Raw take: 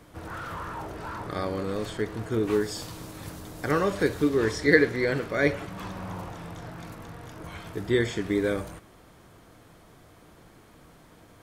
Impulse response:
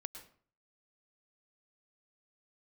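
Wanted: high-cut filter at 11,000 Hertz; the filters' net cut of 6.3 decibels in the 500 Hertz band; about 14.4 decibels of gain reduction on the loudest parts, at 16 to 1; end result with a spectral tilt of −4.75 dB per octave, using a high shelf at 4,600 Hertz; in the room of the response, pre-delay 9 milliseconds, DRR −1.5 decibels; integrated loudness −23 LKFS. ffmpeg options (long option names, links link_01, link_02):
-filter_complex "[0:a]lowpass=11000,equalizer=frequency=500:width_type=o:gain=-8,highshelf=frequency=4600:gain=5.5,acompressor=threshold=-29dB:ratio=16,asplit=2[link_01][link_02];[1:a]atrim=start_sample=2205,adelay=9[link_03];[link_02][link_03]afir=irnorm=-1:irlink=0,volume=4.5dB[link_04];[link_01][link_04]amix=inputs=2:normalize=0,volume=9dB"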